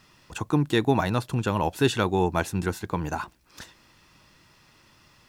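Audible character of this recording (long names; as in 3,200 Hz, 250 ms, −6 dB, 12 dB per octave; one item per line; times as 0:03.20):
a quantiser's noise floor 12 bits, dither triangular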